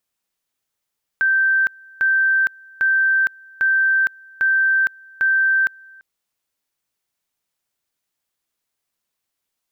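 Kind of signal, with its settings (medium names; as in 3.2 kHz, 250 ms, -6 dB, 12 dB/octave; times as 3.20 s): two-level tone 1.56 kHz -13.5 dBFS, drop 27.5 dB, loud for 0.46 s, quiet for 0.34 s, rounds 6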